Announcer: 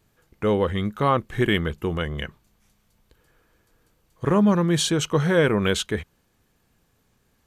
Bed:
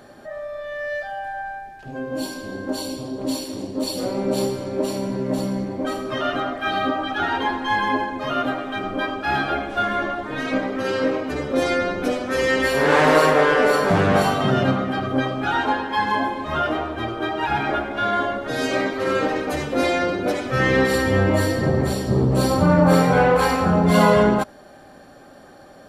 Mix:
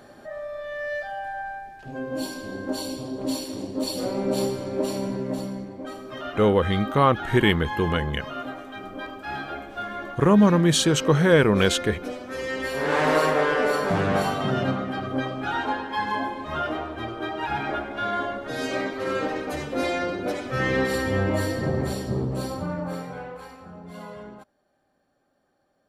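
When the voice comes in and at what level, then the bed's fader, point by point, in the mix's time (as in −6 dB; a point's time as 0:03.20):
5.95 s, +2.0 dB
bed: 0:05.07 −2.5 dB
0:05.76 −10.5 dB
0:12.47 −10.5 dB
0:13.10 −5.5 dB
0:22.01 −5.5 dB
0:23.56 −25 dB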